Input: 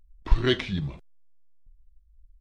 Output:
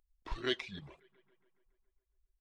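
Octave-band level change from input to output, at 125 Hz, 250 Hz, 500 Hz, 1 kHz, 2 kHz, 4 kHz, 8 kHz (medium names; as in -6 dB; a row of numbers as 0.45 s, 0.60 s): -21.5 dB, -14.5 dB, -11.0 dB, -9.0 dB, -9.0 dB, -8.5 dB, no reading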